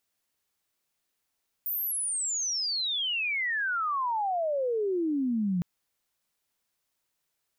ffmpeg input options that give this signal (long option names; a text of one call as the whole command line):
ffmpeg -f lavfi -i "aevalsrc='pow(10,(-28+3.5*t/3.96)/20)*sin(2*PI*15000*3.96/log(170/15000)*(exp(log(170/15000)*t/3.96)-1))':duration=3.96:sample_rate=44100" out.wav